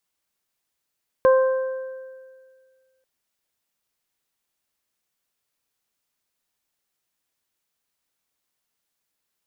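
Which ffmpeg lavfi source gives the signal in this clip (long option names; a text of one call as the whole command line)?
ffmpeg -f lavfi -i "aevalsrc='0.282*pow(10,-3*t/1.87)*sin(2*PI*523*t)+0.1*pow(10,-3*t/1.19)*sin(2*PI*1046*t)+0.0398*pow(10,-3*t/1.98)*sin(2*PI*1569*t)':duration=1.79:sample_rate=44100" out.wav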